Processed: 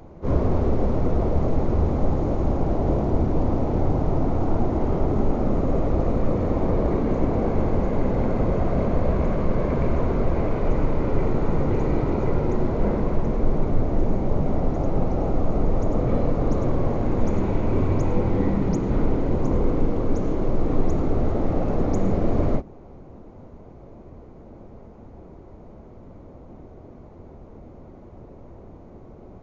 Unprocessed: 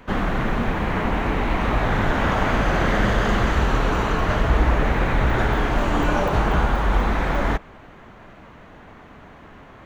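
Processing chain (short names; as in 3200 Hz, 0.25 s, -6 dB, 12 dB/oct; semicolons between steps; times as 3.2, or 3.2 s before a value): vocal rider; wide varispeed 0.335×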